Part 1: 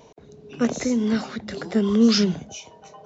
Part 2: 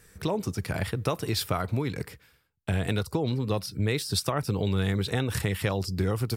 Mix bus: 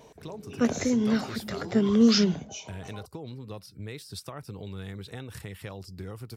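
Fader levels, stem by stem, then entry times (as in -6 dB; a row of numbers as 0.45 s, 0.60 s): -2.5 dB, -12.5 dB; 0.00 s, 0.00 s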